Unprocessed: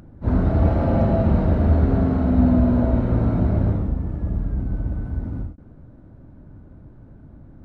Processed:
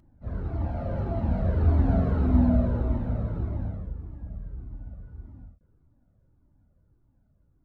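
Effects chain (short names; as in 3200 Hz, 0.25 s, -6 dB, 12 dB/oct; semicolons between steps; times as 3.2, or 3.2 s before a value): Doppler pass-by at 2.16, 8 m/s, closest 4.7 m; cascading flanger falling 1.7 Hz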